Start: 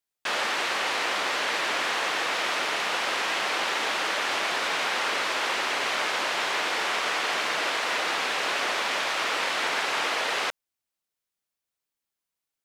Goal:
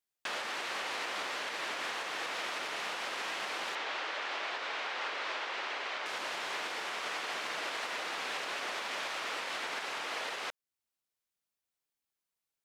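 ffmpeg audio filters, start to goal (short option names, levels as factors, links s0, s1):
-filter_complex "[0:a]asettb=1/sr,asplit=3[s0][s1][s2];[s0]atrim=end=3.754[s3];[s1]atrim=start=3.75:end=6.06,asetpts=PTS-STARTPTS,afade=t=in:d=0.004:c=qsin,afade=t=out:st=2.306:d=0.004:c=qsin,highpass=330,lowpass=4500[s4];[s2]atrim=start=6.056[s5];[s3][s4]acrossfade=d=0.004:c1=hsin:c2=qsin[s6];[s6][s5]acrossfade=d=0.004:c1=qsin:c2=hsin,alimiter=limit=0.0631:level=0:latency=1:release=377,volume=0.668"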